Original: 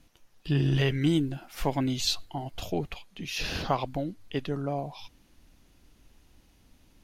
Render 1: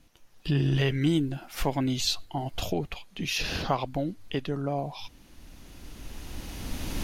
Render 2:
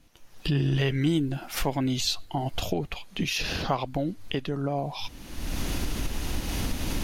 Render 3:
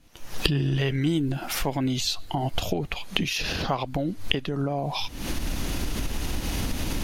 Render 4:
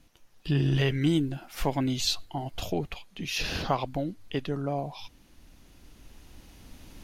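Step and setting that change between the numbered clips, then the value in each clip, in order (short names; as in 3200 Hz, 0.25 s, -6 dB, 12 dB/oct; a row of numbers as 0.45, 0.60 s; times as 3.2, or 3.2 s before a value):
recorder AGC, rising by: 12, 35, 90, 5.1 dB/s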